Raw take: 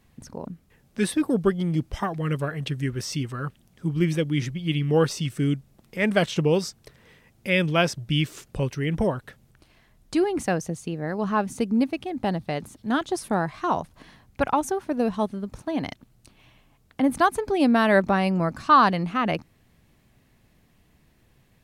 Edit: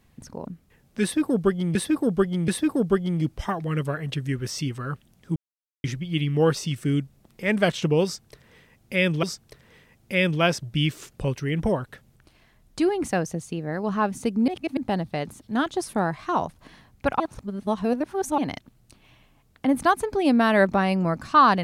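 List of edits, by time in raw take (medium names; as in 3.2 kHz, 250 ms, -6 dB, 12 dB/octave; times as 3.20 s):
1.02–1.75 s: loop, 3 plays
3.90–4.38 s: mute
6.58–7.77 s: loop, 2 plays
11.83–12.12 s: reverse
14.55–15.73 s: reverse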